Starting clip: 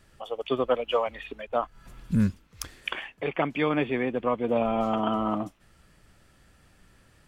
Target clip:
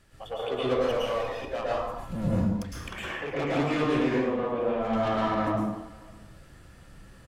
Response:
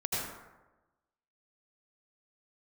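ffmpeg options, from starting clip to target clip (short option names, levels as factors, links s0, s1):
-filter_complex "[0:a]asettb=1/sr,asplit=3[s0][s1][s2];[s0]atrim=end=0.804[s3];[s1]atrim=start=0.8:end=1.49,asetpts=PTS-STARTPTS,afade=t=in:d=0.004:c=qsin,afade=t=out:st=0.686:d=0.004:c=qsin,aeval=exprs='if(lt(val(0),0),0.251*val(0),val(0))':c=same[s4];[s2]atrim=start=1.486[s5];[s3][s4]acrossfade=d=0.004:c1=hsin:c2=qsin[s6];[s6][s5]acrossfade=d=0.004:c1=qsin:c2=hsin,asettb=1/sr,asplit=3[s7][s8][s9];[s7]atrim=end=2.294[s10];[s8]atrim=start=2.29:end=3.32,asetpts=PTS-STARTPTS,afade=t=in:d=0.004:c=qsin,afade=t=out:st=1.026:d=0.004:c=qsin,highshelf=f=3900:g=-9[s11];[s9]atrim=start=3.316[s12];[s10][s11]acrossfade=d=0.004:c1=hsin:c2=qsin[s13];[s13][s12]acrossfade=d=0.004:c1=qsin:c2=hsin,asettb=1/sr,asplit=3[s14][s15][s16];[s14]atrim=end=4.084[s17];[s15]atrim=start=4.08:end=4.85,asetpts=PTS-STARTPTS,afade=t=in:d=0.004:c=qsin,afade=t=out:st=0.766:d=0.004:c=qsin,acompressor=threshold=0.0355:ratio=6[s18];[s16]atrim=start=4.846[s19];[s17][s18]acrossfade=d=0.004:c1=hsin:c2=qsin[s20];[s20][s19]acrossfade=d=0.004:c1=qsin:c2=hsin,asoftclip=type=tanh:threshold=0.0398,aecho=1:1:544:0.0668[s21];[1:a]atrim=start_sample=2205,afade=t=out:st=0.37:d=0.01,atrim=end_sample=16758,asetrate=32193,aresample=44100[s22];[s21][s22]afir=irnorm=-1:irlink=0,volume=0.75"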